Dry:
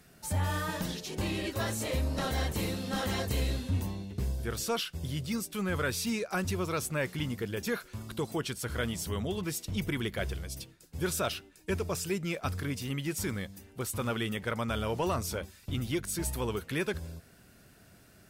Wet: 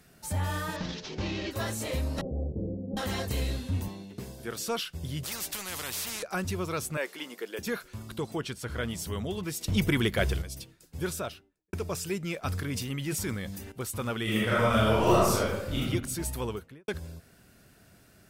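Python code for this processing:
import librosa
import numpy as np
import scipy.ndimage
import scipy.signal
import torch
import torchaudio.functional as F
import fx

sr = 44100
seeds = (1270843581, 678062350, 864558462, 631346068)

y = fx.cvsd(x, sr, bps=32000, at=(0.76, 1.51))
y = fx.steep_lowpass(y, sr, hz=580.0, slope=36, at=(2.21, 2.97))
y = fx.highpass(y, sr, hz=170.0, slope=12, at=(3.88, 4.68))
y = fx.spectral_comp(y, sr, ratio=4.0, at=(5.23, 6.23))
y = fx.highpass(y, sr, hz=330.0, slope=24, at=(6.97, 7.59))
y = fx.high_shelf(y, sr, hz=fx.line((8.17, 9700.0), (8.89, 6000.0)), db=-8.0, at=(8.17, 8.89), fade=0.02)
y = fx.studio_fade_out(y, sr, start_s=10.97, length_s=0.76)
y = fx.sustainer(y, sr, db_per_s=30.0, at=(12.43, 13.72))
y = fx.reverb_throw(y, sr, start_s=14.23, length_s=1.57, rt60_s=1.0, drr_db=-8.0)
y = fx.studio_fade_out(y, sr, start_s=16.42, length_s=0.46)
y = fx.edit(y, sr, fx.clip_gain(start_s=9.61, length_s=0.81, db=7.0), tone=tone)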